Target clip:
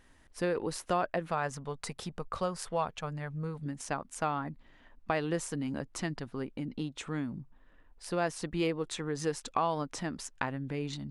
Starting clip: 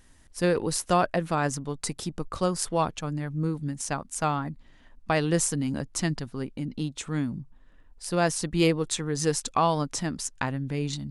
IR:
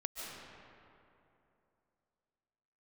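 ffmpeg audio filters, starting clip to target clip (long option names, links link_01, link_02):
-filter_complex "[0:a]asettb=1/sr,asplit=3[link_01][link_02][link_03];[link_01]atrim=end=1.304[link_04];[link_02]atrim=start=1.3:end=3.66,asetpts=PTS-STARTPTS,afade=type=in:duration=0.004:curve=qsin,afade=type=out:start_time=2.356:duration=0.004:curve=qsin,equalizer=frequency=310:width_type=o:width=0.38:gain=-13.5[link_05];[link_03]atrim=start=3.656[link_06];[link_04][link_05]acrossfade=duration=0.004:curve1=hsin:curve2=qsin[link_07];[link_07][link_06]acrossfade=duration=0.004:curve1=qsin:curve2=hsin,acompressor=threshold=-30dB:ratio=2,bass=frequency=250:gain=-6,treble=frequency=4000:gain=-10"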